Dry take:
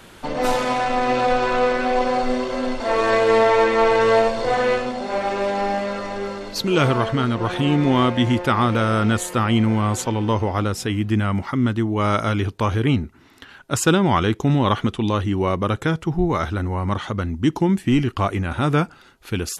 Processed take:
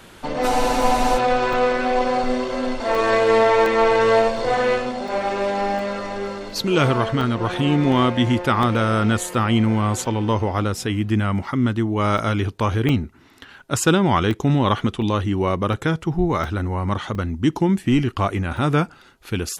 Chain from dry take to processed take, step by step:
frozen spectrum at 0:00.50, 0.67 s
regular buffer underruns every 0.71 s, samples 64, zero, from 0:00.82

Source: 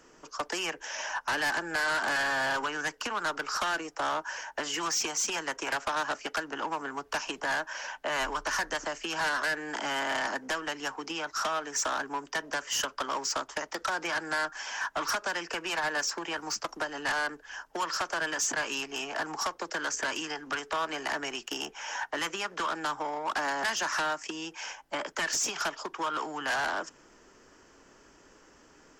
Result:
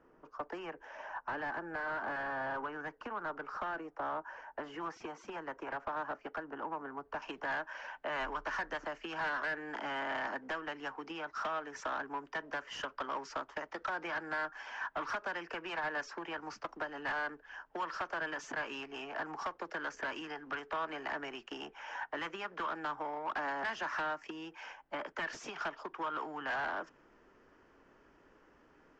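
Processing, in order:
low-pass filter 1,300 Hz 12 dB per octave, from 0:07.22 2,400 Hz
level −5.5 dB

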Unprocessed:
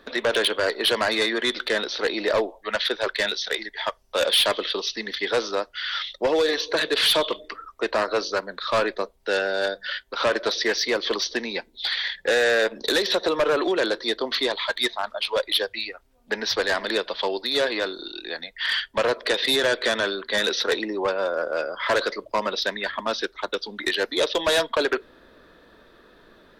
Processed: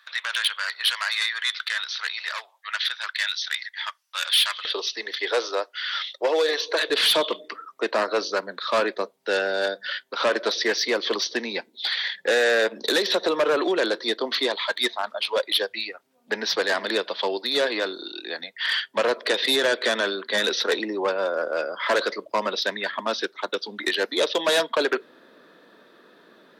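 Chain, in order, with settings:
high-pass filter 1,200 Hz 24 dB per octave, from 0:04.65 370 Hz, from 0:06.90 170 Hz

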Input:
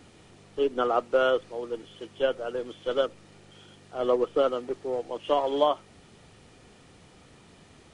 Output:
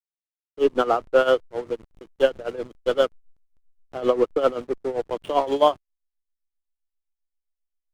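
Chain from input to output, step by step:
slack as between gear wheels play −34.5 dBFS
amplitude tremolo 7.6 Hz, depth 80%
level +8 dB

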